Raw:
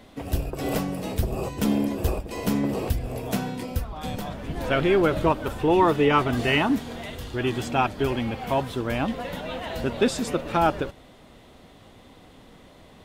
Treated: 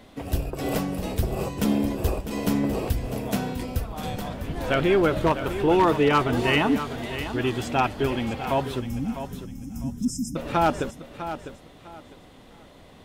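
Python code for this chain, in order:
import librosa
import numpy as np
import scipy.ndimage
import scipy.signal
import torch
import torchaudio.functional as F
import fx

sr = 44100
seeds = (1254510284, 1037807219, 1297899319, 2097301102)

y = 10.0 ** (-11.5 / 20.0) * (np.abs((x / 10.0 ** (-11.5 / 20.0) + 3.0) % 4.0 - 2.0) - 1.0)
y = fx.brickwall_bandstop(y, sr, low_hz=310.0, high_hz=5000.0, at=(8.79, 10.35), fade=0.02)
y = fx.echo_feedback(y, sr, ms=652, feedback_pct=24, wet_db=-11)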